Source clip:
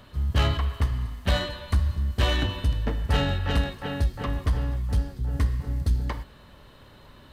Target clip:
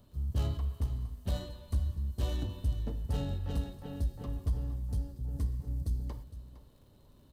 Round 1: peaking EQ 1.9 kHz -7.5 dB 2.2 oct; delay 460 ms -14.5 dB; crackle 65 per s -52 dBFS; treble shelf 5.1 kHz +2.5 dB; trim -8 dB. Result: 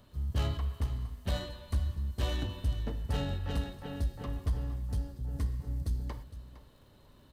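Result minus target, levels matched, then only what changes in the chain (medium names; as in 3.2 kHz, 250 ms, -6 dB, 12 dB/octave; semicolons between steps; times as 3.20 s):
2 kHz band +8.5 dB
change: peaking EQ 1.9 kHz -17.5 dB 2.2 oct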